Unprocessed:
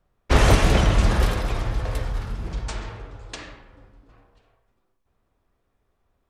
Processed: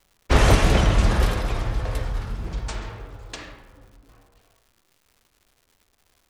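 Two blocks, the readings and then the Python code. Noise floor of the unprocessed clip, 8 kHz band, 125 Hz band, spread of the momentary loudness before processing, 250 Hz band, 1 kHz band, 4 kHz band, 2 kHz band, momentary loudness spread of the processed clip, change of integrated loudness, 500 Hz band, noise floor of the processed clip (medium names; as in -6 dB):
-72 dBFS, 0.0 dB, 0.0 dB, 21 LU, 0.0 dB, 0.0 dB, 0.0 dB, 0.0 dB, 21 LU, 0.0 dB, 0.0 dB, -67 dBFS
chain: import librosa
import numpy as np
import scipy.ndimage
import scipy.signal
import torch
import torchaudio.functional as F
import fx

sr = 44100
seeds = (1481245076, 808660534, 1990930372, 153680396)

y = fx.dmg_crackle(x, sr, seeds[0], per_s=290.0, level_db=-47.0)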